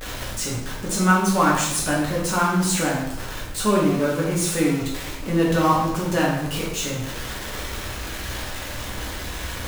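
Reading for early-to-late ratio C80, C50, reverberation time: 5.0 dB, 2.0 dB, 0.90 s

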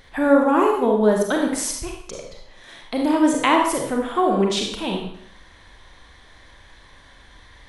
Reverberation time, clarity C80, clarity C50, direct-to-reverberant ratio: 0.65 s, 7.0 dB, 3.0 dB, 0.5 dB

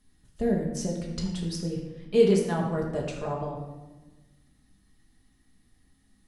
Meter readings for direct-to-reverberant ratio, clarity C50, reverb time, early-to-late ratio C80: -2.0 dB, 4.0 dB, 1.2 s, 6.0 dB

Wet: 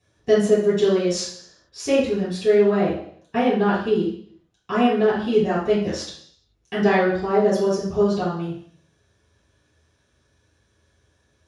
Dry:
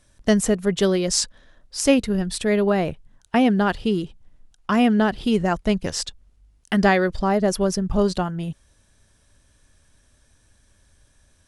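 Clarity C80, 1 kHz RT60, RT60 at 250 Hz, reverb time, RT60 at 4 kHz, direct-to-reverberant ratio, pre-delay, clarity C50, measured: 7.5 dB, 0.55 s, 0.65 s, 0.60 s, 0.70 s, -11.5 dB, 3 ms, 3.0 dB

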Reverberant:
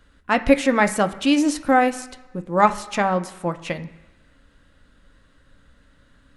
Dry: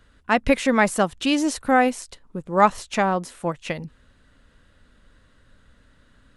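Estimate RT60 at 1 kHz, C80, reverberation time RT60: 1.2 s, 17.0 dB, 1.2 s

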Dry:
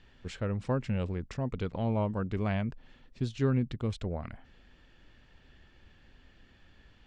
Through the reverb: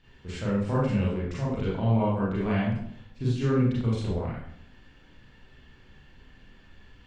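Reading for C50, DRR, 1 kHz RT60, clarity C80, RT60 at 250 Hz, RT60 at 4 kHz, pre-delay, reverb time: 0.5 dB, -8.0 dB, 0.55 s, 5.5 dB, 0.75 s, 0.50 s, 31 ms, 0.60 s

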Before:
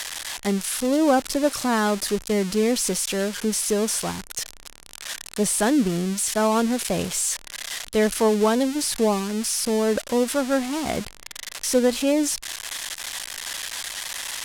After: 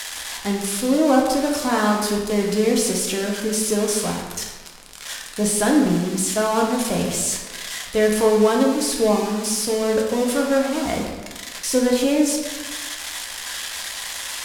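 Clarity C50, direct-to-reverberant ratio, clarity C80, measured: 3.5 dB, -1.0 dB, 5.5 dB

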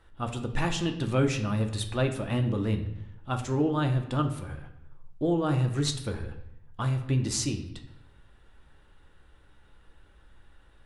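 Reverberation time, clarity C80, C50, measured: 0.80 s, 12.5 dB, 10.0 dB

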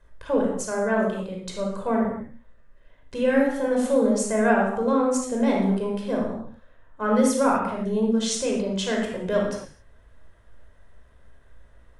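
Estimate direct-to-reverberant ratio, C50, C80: -1.5 dB, 1.5 dB, 5.5 dB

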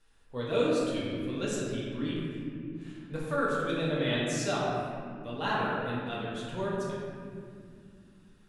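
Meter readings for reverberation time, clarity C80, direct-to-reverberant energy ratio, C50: 2.2 s, 0.0 dB, -7.0 dB, -1.5 dB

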